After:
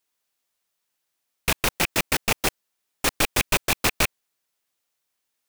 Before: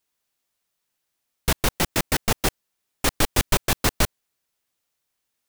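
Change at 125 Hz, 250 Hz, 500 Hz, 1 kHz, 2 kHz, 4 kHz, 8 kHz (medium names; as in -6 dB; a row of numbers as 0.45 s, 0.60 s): -5.5 dB, -3.0 dB, -1.5 dB, -0.5 dB, +3.0 dB, +1.0 dB, 0.0 dB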